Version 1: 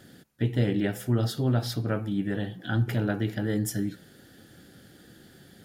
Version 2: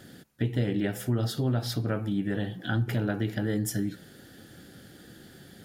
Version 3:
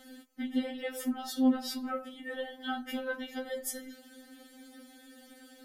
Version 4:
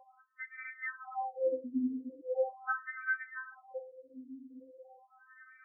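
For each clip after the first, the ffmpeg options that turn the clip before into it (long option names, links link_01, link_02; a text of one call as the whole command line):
ffmpeg -i in.wav -af "acompressor=threshold=-29dB:ratio=2,volume=2.5dB" out.wav
ffmpeg -i in.wav -af "afftfilt=real='re*3.46*eq(mod(b,12),0)':imag='im*3.46*eq(mod(b,12),0)':win_size=2048:overlap=0.75" out.wav
ffmpeg -i in.wav -af "lowpass=2600,afftfilt=real='re*between(b*sr/1024,320*pow(1700/320,0.5+0.5*sin(2*PI*0.4*pts/sr))/1.41,320*pow(1700/320,0.5+0.5*sin(2*PI*0.4*pts/sr))*1.41)':imag='im*between(b*sr/1024,320*pow(1700/320,0.5+0.5*sin(2*PI*0.4*pts/sr))/1.41,320*pow(1700/320,0.5+0.5*sin(2*PI*0.4*pts/sr))*1.41)':win_size=1024:overlap=0.75,volume=7.5dB" out.wav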